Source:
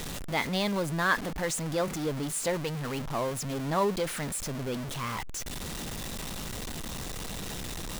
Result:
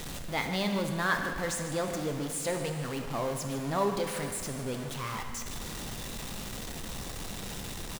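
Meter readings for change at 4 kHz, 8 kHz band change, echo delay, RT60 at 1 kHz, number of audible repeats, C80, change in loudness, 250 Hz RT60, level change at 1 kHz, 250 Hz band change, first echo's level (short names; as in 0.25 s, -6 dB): -2.0 dB, -2.0 dB, 0.149 s, 2.1 s, 1, 6.5 dB, -1.5 dB, 2.1 s, -1.5 dB, -1.5 dB, -13.0 dB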